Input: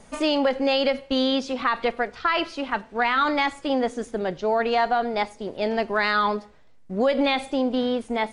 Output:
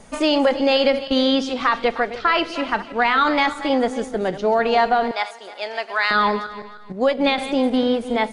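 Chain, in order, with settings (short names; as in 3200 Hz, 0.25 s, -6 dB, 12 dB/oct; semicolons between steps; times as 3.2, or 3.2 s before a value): regenerating reverse delay 0.154 s, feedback 51%, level -12.5 dB; 5.11–6.11 HPF 900 Hz 12 dB/oct; 6.92–7.38 gate -20 dBFS, range -9 dB; gain +4 dB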